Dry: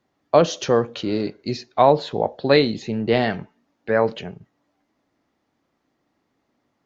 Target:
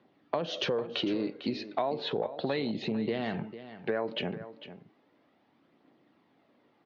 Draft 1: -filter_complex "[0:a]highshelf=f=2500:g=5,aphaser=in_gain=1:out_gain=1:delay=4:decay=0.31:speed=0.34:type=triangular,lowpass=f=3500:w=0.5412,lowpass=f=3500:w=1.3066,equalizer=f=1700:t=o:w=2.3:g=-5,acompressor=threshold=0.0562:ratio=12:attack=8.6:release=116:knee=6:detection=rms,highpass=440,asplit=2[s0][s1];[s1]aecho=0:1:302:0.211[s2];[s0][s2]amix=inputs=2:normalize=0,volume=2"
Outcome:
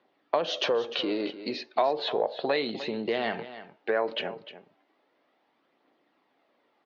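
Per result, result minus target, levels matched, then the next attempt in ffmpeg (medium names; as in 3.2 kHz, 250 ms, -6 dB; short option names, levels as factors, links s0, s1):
125 Hz band -12.0 dB; compression: peak gain reduction -7 dB; echo 148 ms early
-filter_complex "[0:a]highshelf=f=2500:g=5,aphaser=in_gain=1:out_gain=1:delay=4:decay=0.31:speed=0.34:type=triangular,lowpass=f=3500:w=0.5412,lowpass=f=3500:w=1.3066,equalizer=f=1700:t=o:w=2.3:g=-5,acompressor=threshold=0.0562:ratio=12:attack=8.6:release=116:knee=6:detection=rms,highpass=170,asplit=2[s0][s1];[s1]aecho=0:1:302:0.211[s2];[s0][s2]amix=inputs=2:normalize=0,volume=2"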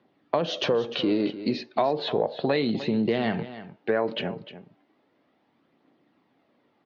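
compression: peak gain reduction -7 dB; echo 148 ms early
-filter_complex "[0:a]highshelf=f=2500:g=5,aphaser=in_gain=1:out_gain=1:delay=4:decay=0.31:speed=0.34:type=triangular,lowpass=f=3500:w=0.5412,lowpass=f=3500:w=1.3066,equalizer=f=1700:t=o:w=2.3:g=-5,acompressor=threshold=0.0237:ratio=12:attack=8.6:release=116:knee=6:detection=rms,highpass=170,asplit=2[s0][s1];[s1]aecho=0:1:302:0.211[s2];[s0][s2]amix=inputs=2:normalize=0,volume=2"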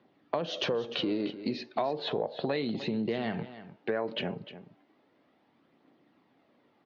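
echo 148 ms early
-filter_complex "[0:a]highshelf=f=2500:g=5,aphaser=in_gain=1:out_gain=1:delay=4:decay=0.31:speed=0.34:type=triangular,lowpass=f=3500:w=0.5412,lowpass=f=3500:w=1.3066,equalizer=f=1700:t=o:w=2.3:g=-5,acompressor=threshold=0.0237:ratio=12:attack=8.6:release=116:knee=6:detection=rms,highpass=170,asplit=2[s0][s1];[s1]aecho=0:1:450:0.211[s2];[s0][s2]amix=inputs=2:normalize=0,volume=2"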